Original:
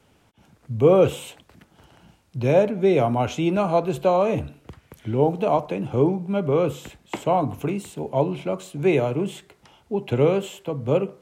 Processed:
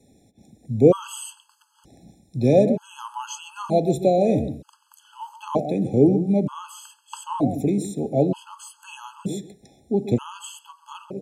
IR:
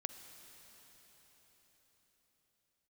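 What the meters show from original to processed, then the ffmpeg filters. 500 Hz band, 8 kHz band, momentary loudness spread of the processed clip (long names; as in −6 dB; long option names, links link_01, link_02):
−2.0 dB, can't be measured, 22 LU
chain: -filter_complex "[0:a]equalizer=frequency=250:width_type=o:width=1:gain=8,equalizer=frequency=2000:width_type=o:width=1:gain=-10,equalizer=frequency=4000:width_type=o:width=1:gain=3,equalizer=frequency=8000:width_type=o:width=1:gain=9,asplit=2[link_01][link_02];[link_02]adelay=134,lowpass=frequency=1200:poles=1,volume=-10dB,asplit=2[link_03][link_04];[link_04]adelay=134,lowpass=frequency=1200:poles=1,volume=0.17[link_05];[link_03][link_05]amix=inputs=2:normalize=0[link_06];[link_01][link_06]amix=inputs=2:normalize=0,afftfilt=real='re*gt(sin(2*PI*0.54*pts/sr)*(1-2*mod(floor(b*sr/1024/850),2)),0)':imag='im*gt(sin(2*PI*0.54*pts/sr)*(1-2*mod(floor(b*sr/1024/850),2)),0)':win_size=1024:overlap=0.75"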